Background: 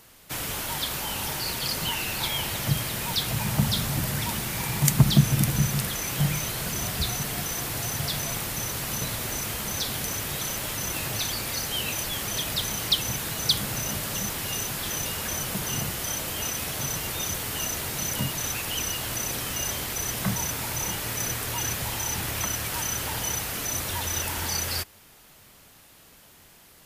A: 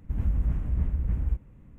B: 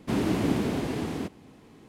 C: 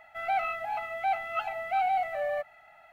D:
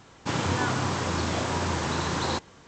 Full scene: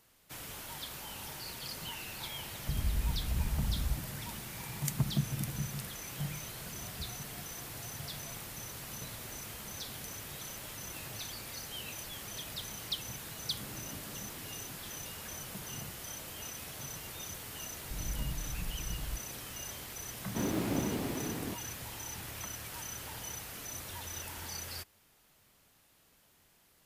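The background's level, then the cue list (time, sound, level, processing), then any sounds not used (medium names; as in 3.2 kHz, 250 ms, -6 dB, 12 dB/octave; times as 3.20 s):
background -13.5 dB
2.59 s: add A -7 dB
13.49 s: add B -13.5 dB + compression 2.5:1, threshold -44 dBFS
17.81 s: add A -11.5 dB + comb 6.4 ms
20.27 s: add B -7 dB + self-modulated delay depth 0.41 ms
not used: C, D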